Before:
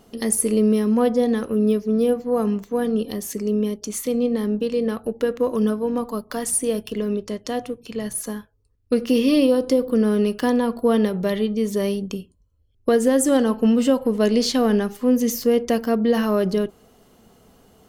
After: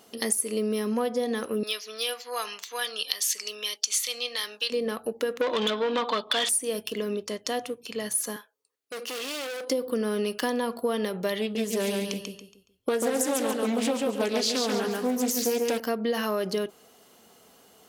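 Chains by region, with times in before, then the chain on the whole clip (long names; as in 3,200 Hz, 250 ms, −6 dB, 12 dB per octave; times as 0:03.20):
0:01.63–0:04.70: high-pass filter 1,000 Hz + parametric band 4,000 Hz +13 dB 2.1 octaves
0:05.41–0:06.49: low-pass with resonance 3,500 Hz, resonance Q 12 + mid-hump overdrive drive 21 dB, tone 2,600 Hz, clips at −9.5 dBFS
0:08.36–0:09.70: high-pass filter 460 Hz + notch filter 5,200 Hz, Q 22 + gain into a clipping stage and back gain 31.5 dB
0:11.41–0:15.80: hum removal 429.9 Hz, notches 31 + repeating echo 140 ms, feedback 33%, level −4 dB + highs frequency-modulated by the lows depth 0.32 ms
whole clip: high-pass filter 870 Hz 6 dB per octave; parametric band 1,200 Hz −2.5 dB 1.8 octaves; downward compressor, threshold −27 dBFS; level +4 dB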